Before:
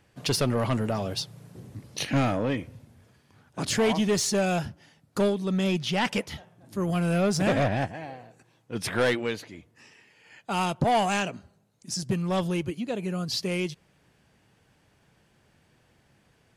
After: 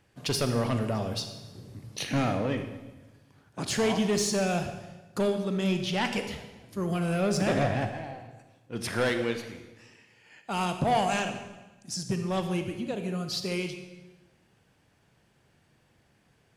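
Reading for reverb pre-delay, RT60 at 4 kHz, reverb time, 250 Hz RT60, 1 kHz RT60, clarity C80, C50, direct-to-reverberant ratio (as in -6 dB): 32 ms, 1.0 s, 1.2 s, 1.3 s, 1.1 s, 9.5 dB, 8.0 dB, 6.5 dB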